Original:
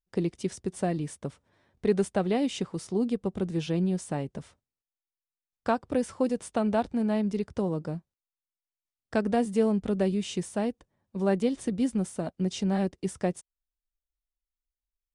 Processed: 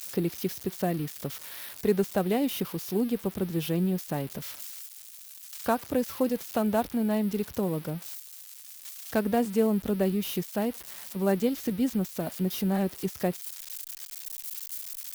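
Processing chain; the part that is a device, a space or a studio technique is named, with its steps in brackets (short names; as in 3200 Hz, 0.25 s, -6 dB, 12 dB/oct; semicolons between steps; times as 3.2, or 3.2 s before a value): budget class-D amplifier (switching dead time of 0.073 ms; switching spikes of -25.5 dBFS)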